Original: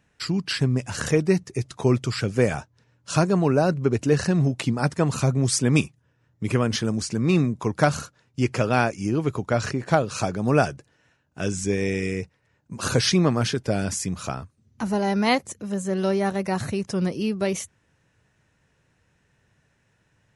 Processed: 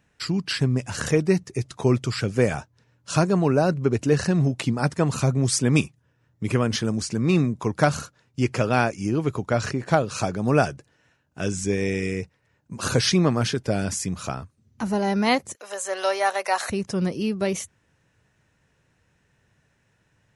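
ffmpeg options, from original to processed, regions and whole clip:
-filter_complex "[0:a]asettb=1/sr,asplit=3[s0][s1][s2];[s0]atrim=end=15.554[s3];[s1]atrim=start=15.55:end=16.7,asetpts=PTS-STARTPTS,afade=t=in:d=0.004:c=qsin,afade=t=out:st=1.146:d=0.004:c=qsin,highpass=f=590:w=0.5412,highpass=f=590:w=1.3066,acontrast=76[s4];[s2]atrim=start=16.696[s5];[s3][s4]acrossfade=d=0.004:c1=hsin:c2=qsin[s6];[s6][s5]acrossfade=d=0.004:c1=qsin:c2=hsin"

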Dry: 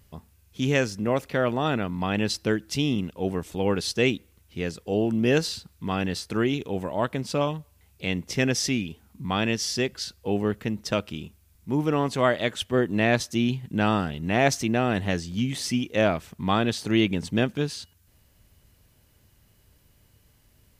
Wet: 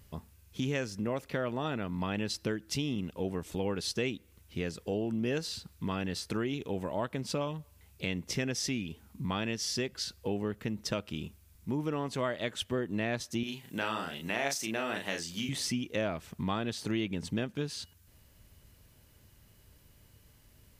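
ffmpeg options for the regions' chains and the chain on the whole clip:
-filter_complex "[0:a]asettb=1/sr,asplit=3[s0][s1][s2];[s0]atrim=end=13.434[s3];[s1]atrim=start=13.43:end=15.49,asetpts=PTS-STARTPTS,afade=t=in:d=0.004:c=qsin,afade=t=out:st=2.056:d=0.004:c=qsin,highpass=f=680:p=1,highshelf=f=6900:g=7.5,asplit=2[s4][s5];[s5]adelay=36,volume=0.631[s6];[s4][s6]amix=inputs=2:normalize=0,atrim=end_sample=90846[s7];[s2]atrim=start=15.486[s8];[s3][s7]acrossfade=d=0.004:c1=hsin:c2=qsin[s9];[s9][s8]acrossfade=d=0.004:c1=qsin:c2=hsin,bandreject=f=750:w=19,acompressor=threshold=0.0251:ratio=3"

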